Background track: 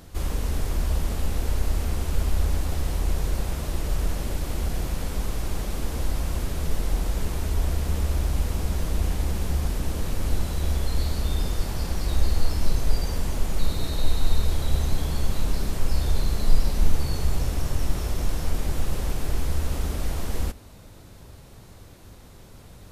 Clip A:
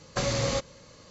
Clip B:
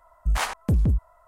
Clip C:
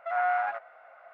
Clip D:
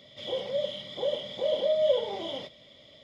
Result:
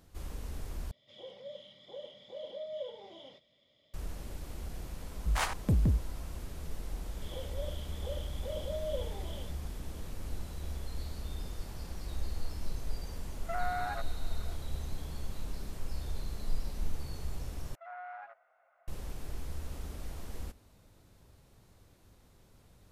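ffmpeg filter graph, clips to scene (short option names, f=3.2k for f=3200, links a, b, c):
-filter_complex "[4:a]asplit=2[a][b];[3:a]asplit=2[c][d];[0:a]volume=-14.5dB[e];[2:a]highpass=42[f];[c]acompressor=threshold=-28dB:ratio=6:attack=3.2:release=140:knee=1:detection=peak[g];[d]alimiter=limit=-20.5dB:level=0:latency=1:release=71[h];[e]asplit=3[i][j][k];[i]atrim=end=0.914[l];[a]atrim=end=3.03,asetpts=PTS-STARTPTS,volume=-16dB[m];[j]atrim=start=3.936:end=17.754[n];[h]atrim=end=1.13,asetpts=PTS-STARTPTS,volume=-16.5dB[o];[k]atrim=start=18.876[p];[f]atrim=end=1.27,asetpts=PTS-STARTPTS,volume=-5.5dB,afade=t=in:d=0.004:c=hsin,afade=t=out:st=1.266:d=0.004:c=hsin,adelay=5000[q];[b]atrim=end=3.03,asetpts=PTS-STARTPTS,volume=-13dB,afade=t=in:d=0.004:c=hsin,afade=t=out:st=3.026:d=0.004:c=hsin,adelay=7040[r];[g]atrim=end=1.13,asetpts=PTS-STARTPTS,volume=-3.5dB,afade=t=in:d=0.004:c=hsin,afade=t=out:st=1.126:d=0.004:c=hsin,adelay=13430[s];[l][m]acrossfade=d=0.004:c1=hsin:c2=hsin[t];[t][n]acrossfade=d=0.004:c1=hsin:c2=hsin[u];[u][o]acrossfade=d=0.004:c1=hsin:c2=hsin[v];[v][p]acrossfade=d=0.004:c1=hsin:c2=hsin[w];[w][q][r][s]amix=inputs=4:normalize=0"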